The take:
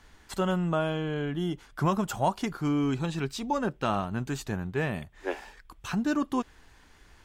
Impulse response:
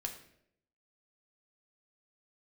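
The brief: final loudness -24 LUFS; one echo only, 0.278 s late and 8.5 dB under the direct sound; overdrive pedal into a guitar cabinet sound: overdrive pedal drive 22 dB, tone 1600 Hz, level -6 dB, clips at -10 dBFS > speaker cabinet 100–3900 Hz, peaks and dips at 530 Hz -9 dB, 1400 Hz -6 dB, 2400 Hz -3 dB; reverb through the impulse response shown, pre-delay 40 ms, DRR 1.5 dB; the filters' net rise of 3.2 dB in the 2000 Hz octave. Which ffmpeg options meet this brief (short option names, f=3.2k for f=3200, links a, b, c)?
-filter_complex "[0:a]equalizer=f=2k:t=o:g=8.5,aecho=1:1:278:0.376,asplit=2[a][b];[1:a]atrim=start_sample=2205,adelay=40[c];[b][c]afir=irnorm=-1:irlink=0,volume=-1dB[d];[a][d]amix=inputs=2:normalize=0,asplit=2[e][f];[f]highpass=f=720:p=1,volume=22dB,asoftclip=type=tanh:threshold=-10dB[g];[e][g]amix=inputs=2:normalize=0,lowpass=f=1.6k:p=1,volume=-6dB,highpass=100,equalizer=f=530:t=q:w=4:g=-9,equalizer=f=1.4k:t=q:w=4:g=-6,equalizer=f=2.4k:t=q:w=4:g=-3,lowpass=f=3.9k:w=0.5412,lowpass=f=3.9k:w=1.3066,volume=-1dB"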